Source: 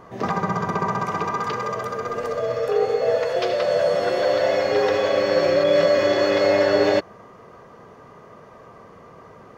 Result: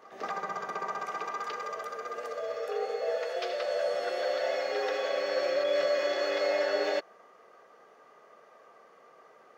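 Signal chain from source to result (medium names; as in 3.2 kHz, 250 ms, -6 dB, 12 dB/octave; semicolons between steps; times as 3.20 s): high-pass 520 Hz 12 dB/octave; band-stop 1 kHz, Q 6; reverse echo 182 ms -19.5 dB; trim -8 dB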